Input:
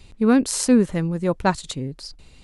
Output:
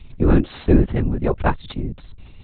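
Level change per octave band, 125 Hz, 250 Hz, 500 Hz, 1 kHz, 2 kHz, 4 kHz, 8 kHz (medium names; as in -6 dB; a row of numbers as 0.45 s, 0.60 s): +7.0 dB, -1.5 dB, +0.5 dB, -1.0 dB, -1.5 dB, -8.0 dB, under -40 dB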